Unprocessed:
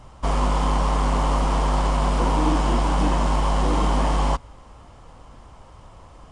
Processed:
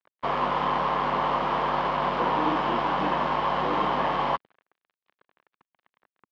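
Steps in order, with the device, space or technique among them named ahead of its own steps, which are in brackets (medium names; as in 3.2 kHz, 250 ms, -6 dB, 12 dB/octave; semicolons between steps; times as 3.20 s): blown loudspeaker (crossover distortion -37 dBFS; cabinet simulation 230–3700 Hz, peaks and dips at 270 Hz -7 dB, 1.1 kHz +3 dB, 1.7 kHz +4 dB)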